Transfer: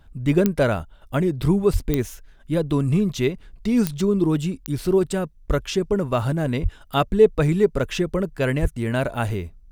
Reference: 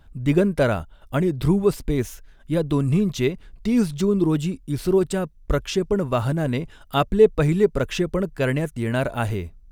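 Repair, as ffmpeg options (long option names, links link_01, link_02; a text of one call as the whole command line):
ffmpeg -i in.wav -filter_complex "[0:a]adeclick=threshold=4,asplit=3[link_01][link_02][link_03];[link_01]afade=type=out:start_time=1.72:duration=0.02[link_04];[link_02]highpass=frequency=140:width=0.5412,highpass=frequency=140:width=1.3066,afade=type=in:start_time=1.72:duration=0.02,afade=type=out:start_time=1.84:duration=0.02[link_05];[link_03]afade=type=in:start_time=1.84:duration=0.02[link_06];[link_04][link_05][link_06]amix=inputs=3:normalize=0,asplit=3[link_07][link_08][link_09];[link_07]afade=type=out:start_time=6.62:duration=0.02[link_10];[link_08]highpass=frequency=140:width=0.5412,highpass=frequency=140:width=1.3066,afade=type=in:start_time=6.62:duration=0.02,afade=type=out:start_time=6.74:duration=0.02[link_11];[link_09]afade=type=in:start_time=6.74:duration=0.02[link_12];[link_10][link_11][link_12]amix=inputs=3:normalize=0,asplit=3[link_13][link_14][link_15];[link_13]afade=type=out:start_time=8.61:duration=0.02[link_16];[link_14]highpass=frequency=140:width=0.5412,highpass=frequency=140:width=1.3066,afade=type=in:start_time=8.61:duration=0.02,afade=type=out:start_time=8.73:duration=0.02[link_17];[link_15]afade=type=in:start_time=8.73:duration=0.02[link_18];[link_16][link_17][link_18]amix=inputs=3:normalize=0" out.wav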